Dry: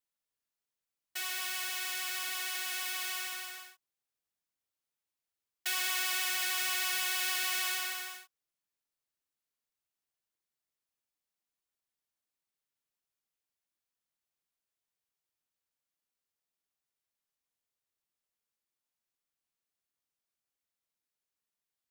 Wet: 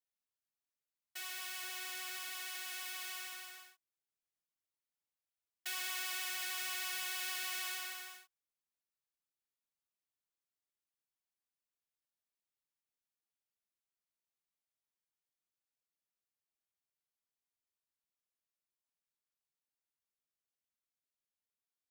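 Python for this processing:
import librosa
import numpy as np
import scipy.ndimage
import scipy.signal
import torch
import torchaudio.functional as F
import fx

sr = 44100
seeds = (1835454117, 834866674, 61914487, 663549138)

y = fx.low_shelf(x, sr, hz=450.0, db=8.5, at=(1.63, 2.17))
y = F.gain(torch.from_numpy(y), -7.5).numpy()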